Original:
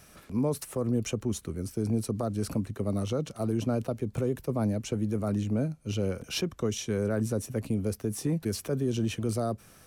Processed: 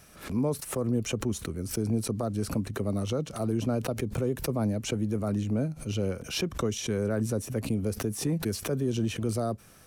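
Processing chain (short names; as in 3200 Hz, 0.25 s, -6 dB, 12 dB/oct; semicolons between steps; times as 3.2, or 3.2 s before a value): backwards sustainer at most 130 dB/s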